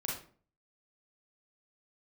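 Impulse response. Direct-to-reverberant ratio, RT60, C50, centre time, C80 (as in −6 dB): −3.5 dB, 0.45 s, 2.5 dB, 41 ms, 9.5 dB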